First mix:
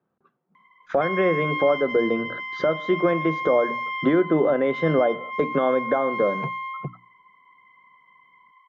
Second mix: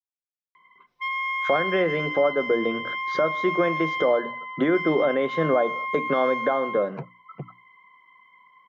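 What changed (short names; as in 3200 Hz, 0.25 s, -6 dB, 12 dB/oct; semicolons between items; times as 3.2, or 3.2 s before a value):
speech: entry +0.55 s; master: add tilt +1.5 dB/oct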